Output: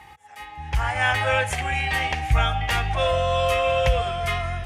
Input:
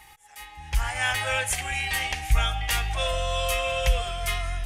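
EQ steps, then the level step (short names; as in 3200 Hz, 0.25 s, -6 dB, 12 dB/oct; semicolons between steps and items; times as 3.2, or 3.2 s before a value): HPF 64 Hz 24 dB/oct; LPF 1300 Hz 6 dB/oct; +8.5 dB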